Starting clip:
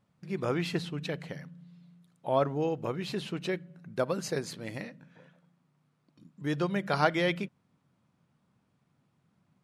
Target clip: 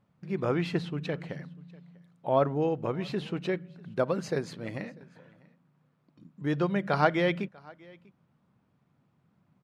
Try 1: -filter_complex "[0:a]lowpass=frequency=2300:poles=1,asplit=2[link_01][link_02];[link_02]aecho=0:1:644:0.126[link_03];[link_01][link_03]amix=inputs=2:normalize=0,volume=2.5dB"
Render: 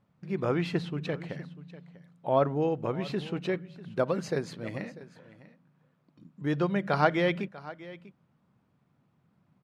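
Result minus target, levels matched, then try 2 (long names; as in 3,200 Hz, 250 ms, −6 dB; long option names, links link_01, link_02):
echo-to-direct +7 dB
-filter_complex "[0:a]lowpass=frequency=2300:poles=1,asplit=2[link_01][link_02];[link_02]aecho=0:1:644:0.0562[link_03];[link_01][link_03]amix=inputs=2:normalize=0,volume=2.5dB"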